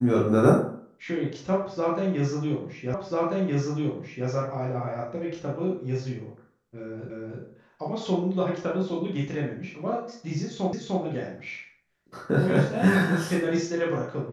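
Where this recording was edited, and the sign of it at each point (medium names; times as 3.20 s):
2.94 s: repeat of the last 1.34 s
7.10 s: repeat of the last 0.31 s
10.73 s: repeat of the last 0.3 s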